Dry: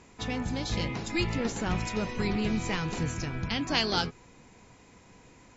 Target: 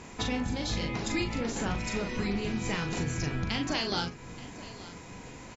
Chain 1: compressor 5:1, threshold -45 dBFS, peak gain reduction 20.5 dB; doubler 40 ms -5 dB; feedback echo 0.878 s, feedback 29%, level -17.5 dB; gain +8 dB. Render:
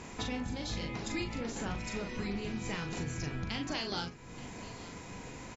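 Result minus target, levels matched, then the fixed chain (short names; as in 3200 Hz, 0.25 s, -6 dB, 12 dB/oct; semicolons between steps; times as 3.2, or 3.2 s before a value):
compressor: peak gain reduction +5.5 dB
compressor 5:1, threshold -38 dBFS, peak gain reduction 15 dB; doubler 40 ms -5 dB; feedback echo 0.878 s, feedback 29%, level -17.5 dB; gain +8 dB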